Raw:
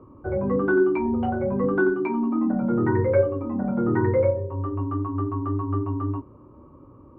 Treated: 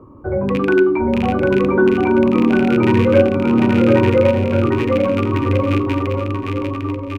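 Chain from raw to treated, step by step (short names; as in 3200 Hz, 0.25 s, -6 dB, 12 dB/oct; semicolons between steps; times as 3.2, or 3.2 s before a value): rattling part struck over -23 dBFS, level -19 dBFS; notch 2600 Hz, Q 22; de-hum 246.9 Hz, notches 27; on a send: bouncing-ball echo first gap 0.75 s, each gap 0.85×, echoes 5; on the sum: gain +6 dB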